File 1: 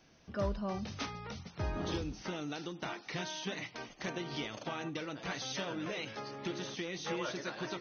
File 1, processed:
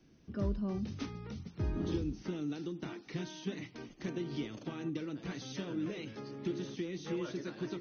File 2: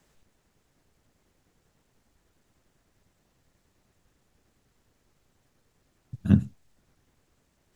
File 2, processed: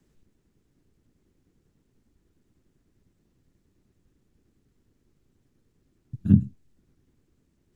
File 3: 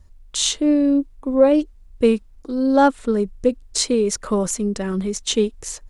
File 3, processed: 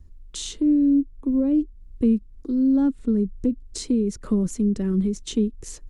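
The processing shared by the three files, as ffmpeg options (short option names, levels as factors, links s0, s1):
-filter_complex "[0:a]lowshelf=f=470:t=q:w=1.5:g=9.5,acrossover=split=260[s0][s1];[s1]acompressor=threshold=0.0708:ratio=5[s2];[s0][s2]amix=inputs=2:normalize=0,volume=0.422"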